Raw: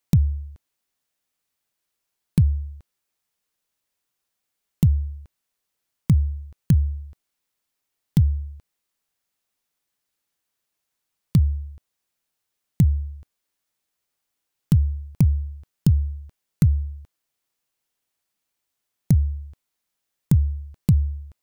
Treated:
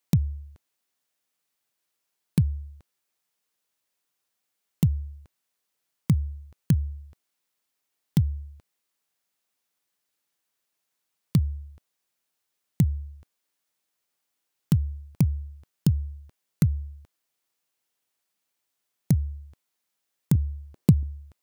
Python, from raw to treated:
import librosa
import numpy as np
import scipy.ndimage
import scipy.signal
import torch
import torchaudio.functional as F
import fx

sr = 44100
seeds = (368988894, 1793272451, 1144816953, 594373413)

y = fx.peak_eq(x, sr, hz=360.0, db=9.5, octaves=2.2, at=(20.35, 21.03))
y = fx.highpass(y, sr, hz=160.0, slope=6)